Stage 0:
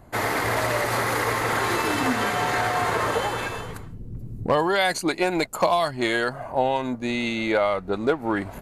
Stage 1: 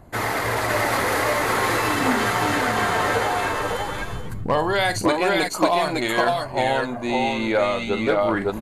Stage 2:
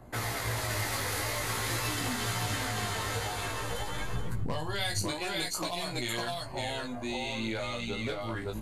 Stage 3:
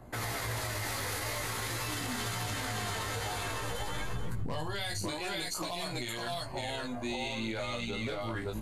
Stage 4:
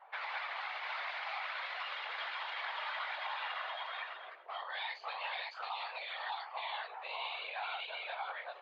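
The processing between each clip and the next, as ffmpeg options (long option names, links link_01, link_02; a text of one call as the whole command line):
ffmpeg -i in.wav -filter_complex "[0:a]aphaser=in_gain=1:out_gain=1:delay=4.2:decay=0.23:speed=0.47:type=triangular,asplit=2[link_01][link_02];[link_02]aecho=0:1:45|554|564:0.282|0.668|0.473[link_03];[link_01][link_03]amix=inputs=2:normalize=0" out.wav
ffmpeg -i in.wav -filter_complex "[0:a]flanger=delay=16.5:depth=3.4:speed=0.5,acrossover=split=140|3000[link_01][link_02][link_03];[link_02]acompressor=threshold=-37dB:ratio=4[link_04];[link_01][link_04][link_03]amix=inputs=3:normalize=0" out.wav
ffmpeg -i in.wav -af "alimiter=level_in=2dB:limit=-24dB:level=0:latency=1:release=40,volume=-2dB" out.wav
ffmpeg -i in.wav -af "afftfilt=real='hypot(re,im)*cos(2*PI*random(0))':imag='hypot(re,im)*sin(2*PI*random(1))':win_size=512:overlap=0.75,highpass=frequency=520:width_type=q:width=0.5412,highpass=frequency=520:width_type=q:width=1.307,lowpass=frequency=3500:width_type=q:width=0.5176,lowpass=frequency=3500:width_type=q:width=0.7071,lowpass=frequency=3500:width_type=q:width=1.932,afreqshift=170,volume=4.5dB" out.wav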